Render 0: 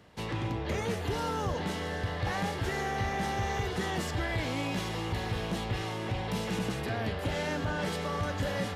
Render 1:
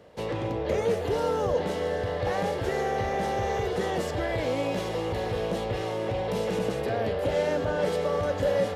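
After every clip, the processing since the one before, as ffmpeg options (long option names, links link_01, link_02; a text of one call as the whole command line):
ffmpeg -i in.wav -af "equalizer=frequency=520:width_type=o:width=0.87:gain=14,volume=-1dB" out.wav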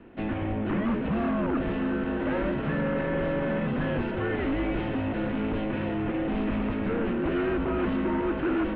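ffmpeg -i in.wav -af "aeval=exprs='0.2*(cos(1*acos(clip(val(0)/0.2,-1,1)))-cos(1*PI/2))+0.0794*(cos(5*acos(clip(val(0)/0.2,-1,1)))-cos(5*PI/2))':channel_layout=same,highpass=frequency=170:width_type=q:width=0.5412,highpass=frequency=170:width_type=q:width=1.307,lowpass=frequency=3100:width_type=q:width=0.5176,lowpass=frequency=3100:width_type=q:width=0.7071,lowpass=frequency=3100:width_type=q:width=1.932,afreqshift=-230,volume=-6dB" out.wav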